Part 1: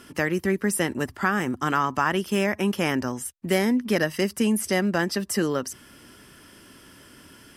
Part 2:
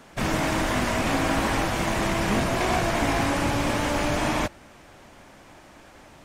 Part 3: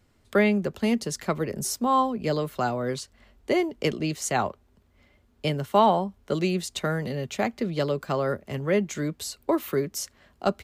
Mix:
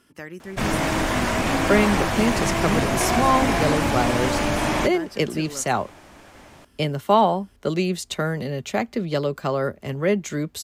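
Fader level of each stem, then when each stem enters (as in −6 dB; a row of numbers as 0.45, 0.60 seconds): −12.5, +2.0, +2.5 decibels; 0.00, 0.40, 1.35 seconds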